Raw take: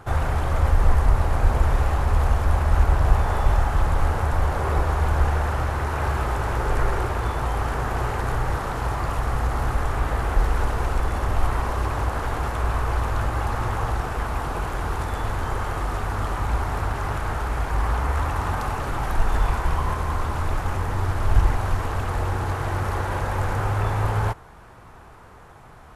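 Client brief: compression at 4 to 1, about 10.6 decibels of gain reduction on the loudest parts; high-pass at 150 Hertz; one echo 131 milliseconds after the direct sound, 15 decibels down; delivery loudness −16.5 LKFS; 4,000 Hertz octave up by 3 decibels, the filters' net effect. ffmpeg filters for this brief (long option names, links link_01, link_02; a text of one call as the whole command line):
ffmpeg -i in.wav -af "highpass=150,equalizer=frequency=4000:width_type=o:gain=4,acompressor=threshold=-36dB:ratio=4,aecho=1:1:131:0.178,volume=21dB" out.wav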